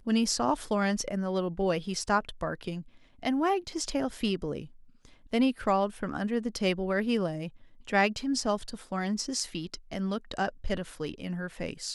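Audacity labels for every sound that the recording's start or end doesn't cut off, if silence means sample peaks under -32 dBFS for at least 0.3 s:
3.230000	4.620000	sound
5.330000	7.470000	sound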